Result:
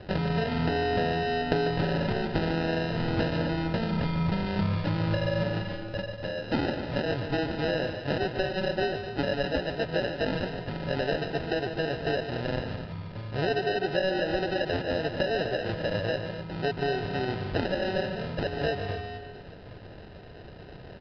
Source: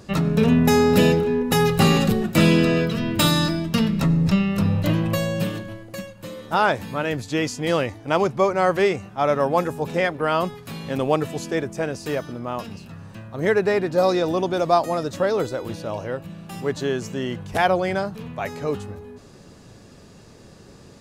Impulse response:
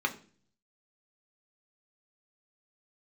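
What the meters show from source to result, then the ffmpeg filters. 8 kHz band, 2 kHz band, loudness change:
under -25 dB, -4.5 dB, -7.5 dB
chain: -af "aecho=1:1:2.1:0.52,acompressor=threshold=0.0562:ratio=10,acrusher=samples=39:mix=1:aa=0.000001,aecho=1:1:145.8|253.6:0.355|0.282,aresample=11025,aresample=44100"

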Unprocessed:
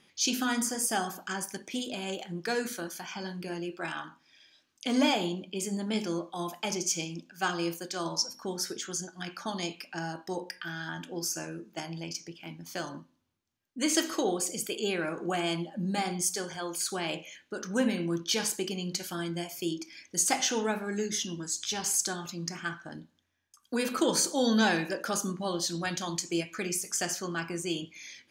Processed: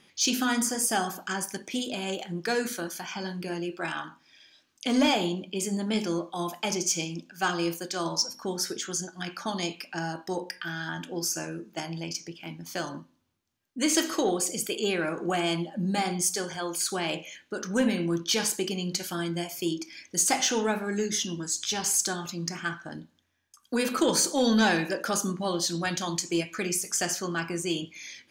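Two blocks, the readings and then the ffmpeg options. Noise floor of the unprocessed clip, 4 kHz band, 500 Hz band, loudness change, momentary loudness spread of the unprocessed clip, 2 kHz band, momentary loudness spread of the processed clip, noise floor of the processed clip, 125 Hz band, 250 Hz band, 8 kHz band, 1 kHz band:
-69 dBFS, +3.0 dB, +3.0 dB, +3.0 dB, 11 LU, +3.0 dB, 11 LU, -66 dBFS, +3.5 dB, +3.0 dB, +3.0 dB, +3.0 dB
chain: -af "asoftclip=type=tanh:threshold=0.15,volume=1.5"

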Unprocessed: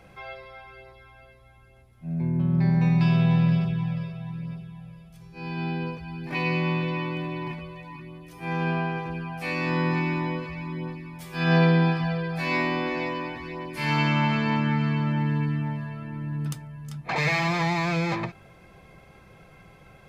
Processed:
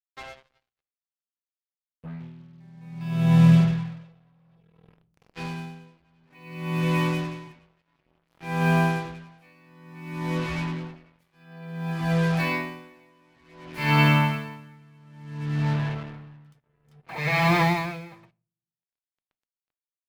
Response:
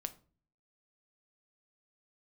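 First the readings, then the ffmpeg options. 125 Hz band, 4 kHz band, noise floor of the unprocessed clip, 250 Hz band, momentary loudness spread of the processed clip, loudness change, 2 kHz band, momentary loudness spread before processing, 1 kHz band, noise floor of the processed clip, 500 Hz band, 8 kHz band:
0.0 dB, -0.5 dB, -53 dBFS, -1.0 dB, 22 LU, +2.0 dB, -0.5 dB, 18 LU, 0.0 dB, under -85 dBFS, -2.0 dB, no reading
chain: -filter_complex "[0:a]bandreject=f=47.33:t=h:w=4,bandreject=f=94.66:t=h:w=4,bandreject=f=141.99:t=h:w=4,bandreject=f=189.32:t=h:w=4,bandreject=f=236.65:t=h:w=4,bandreject=f=283.98:t=h:w=4,bandreject=f=331.31:t=h:w=4,bandreject=f=378.64:t=h:w=4,bandreject=f=425.97:t=h:w=4,bandreject=f=473.3:t=h:w=4,bandreject=f=520.63:t=h:w=4,bandreject=f=567.96:t=h:w=4,bandreject=f=615.29:t=h:w=4,acrusher=bits=5:mix=0:aa=0.5,asplit=2[s0][s1];[1:a]atrim=start_sample=2205,lowpass=4900[s2];[s1][s2]afir=irnorm=-1:irlink=0,volume=1.19[s3];[s0][s3]amix=inputs=2:normalize=0,aeval=exprs='val(0)*pow(10,-34*(0.5-0.5*cos(2*PI*0.57*n/s))/20)':c=same"

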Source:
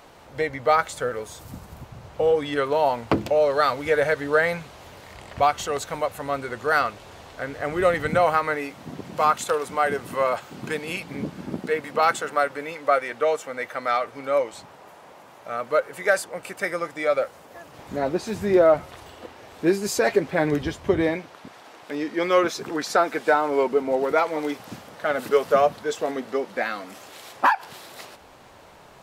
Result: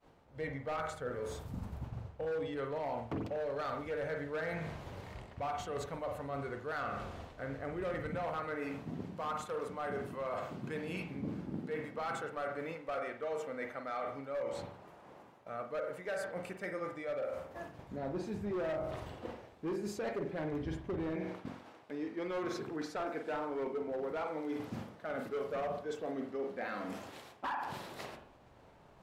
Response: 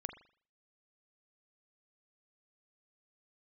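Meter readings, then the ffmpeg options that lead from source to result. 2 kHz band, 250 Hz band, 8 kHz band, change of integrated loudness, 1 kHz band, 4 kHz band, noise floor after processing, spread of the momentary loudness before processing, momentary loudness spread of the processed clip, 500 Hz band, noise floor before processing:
-17.0 dB, -11.5 dB, -19.0 dB, -16.0 dB, -17.0 dB, -16.5 dB, -59 dBFS, 20 LU, 8 LU, -15.5 dB, -48 dBFS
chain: -filter_complex "[0:a]agate=range=0.0224:threshold=0.01:ratio=3:detection=peak,lowshelf=f=380:g=9[s0];[1:a]atrim=start_sample=2205,asetrate=40572,aresample=44100[s1];[s0][s1]afir=irnorm=-1:irlink=0,volume=6.31,asoftclip=hard,volume=0.158,areverse,acompressor=threshold=0.0141:ratio=4,areverse,highshelf=f=5500:g=-7.5,volume=0.841"

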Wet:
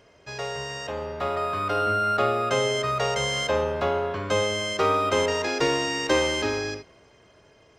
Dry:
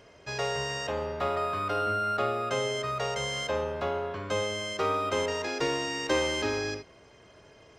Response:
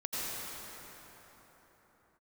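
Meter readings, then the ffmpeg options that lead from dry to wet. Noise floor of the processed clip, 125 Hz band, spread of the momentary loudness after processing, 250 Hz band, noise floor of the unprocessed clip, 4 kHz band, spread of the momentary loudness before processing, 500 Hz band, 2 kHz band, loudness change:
-57 dBFS, +4.5 dB, 10 LU, +5.0 dB, -55 dBFS, +5.0 dB, 5 LU, +5.0 dB, +5.0 dB, +5.0 dB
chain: -af "dynaudnorm=f=230:g=13:m=2.37,volume=0.841"

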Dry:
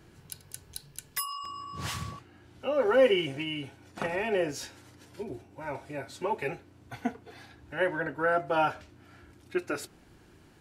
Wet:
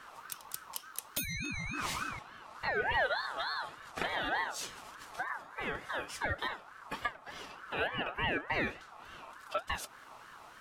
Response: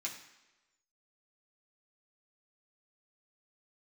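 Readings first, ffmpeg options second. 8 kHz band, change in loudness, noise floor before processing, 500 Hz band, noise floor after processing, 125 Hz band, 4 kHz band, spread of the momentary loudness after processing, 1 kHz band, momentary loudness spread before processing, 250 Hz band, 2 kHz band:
-1.0 dB, -5.5 dB, -58 dBFS, -12.0 dB, -54 dBFS, -4.5 dB, -1.5 dB, 15 LU, -2.5 dB, 19 LU, -9.5 dB, +1.0 dB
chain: -af "acompressor=threshold=0.01:ratio=2.5,aeval=exprs='val(0)*sin(2*PI*1200*n/s+1200*0.2/3.4*sin(2*PI*3.4*n/s))':c=same,volume=2.24"

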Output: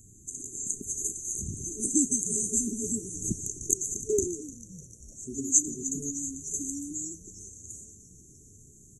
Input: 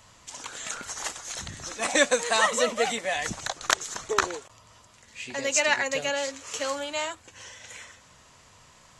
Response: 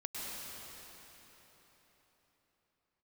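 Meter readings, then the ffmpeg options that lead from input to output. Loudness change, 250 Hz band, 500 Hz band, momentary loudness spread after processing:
-2.0 dB, +5.0 dB, -8.0 dB, 19 LU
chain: -filter_complex "[0:a]afftfilt=real='re*(1-between(b*sr/4096,440,6100))':imag='im*(1-between(b*sr/4096,440,6100))':win_size=4096:overlap=0.75,asplit=7[s0][s1][s2][s3][s4][s5][s6];[s1]adelay=301,afreqshift=-120,volume=0.141[s7];[s2]adelay=602,afreqshift=-240,volume=0.0902[s8];[s3]adelay=903,afreqshift=-360,volume=0.0575[s9];[s4]adelay=1204,afreqshift=-480,volume=0.0372[s10];[s5]adelay=1505,afreqshift=-600,volume=0.0237[s11];[s6]adelay=1806,afreqshift=-720,volume=0.0151[s12];[s0][s7][s8][s9][s10][s11][s12]amix=inputs=7:normalize=0,volume=1.78"

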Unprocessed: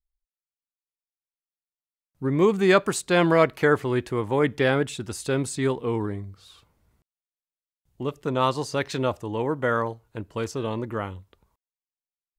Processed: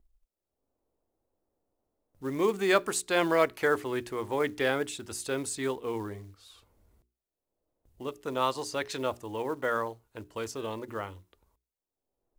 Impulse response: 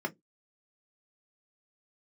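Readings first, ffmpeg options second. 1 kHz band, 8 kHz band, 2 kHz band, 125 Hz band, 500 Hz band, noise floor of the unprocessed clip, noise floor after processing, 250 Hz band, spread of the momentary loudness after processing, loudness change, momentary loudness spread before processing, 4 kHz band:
-5.0 dB, -1.0 dB, -4.5 dB, -14.5 dB, -6.0 dB, under -85 dBFS, under -85 dBFS, -9.0 dB, 14 LU, -6.5 dB, 13 LU, -3.5 dB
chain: -filter_complex "[0:a]acrossover=split=660[s0][s1];[s0]acompressor=mode=upward:threshold=0.00631:ratio=2.5[s2];[s2][s1]amix=inputs=2:normalize=0,highshelf=f=6400:g=6,bandreject=f=60:t=h:w=6,bandreject=f=120:t=h:w=6,bandreject=f=180:t=h:w=6,bandreject=f=240:t=h:w=6,bandreject=f=300:t=h:w=6,bandreject=f=360:t=h:w=6,bandreject=f=420:t=h:w=6,acrusher=bits=7:mode=log:mix=0:aa=0.000001,equalizer=f=150:t=o:w=1.1:g=-10.5,volume=0.562"

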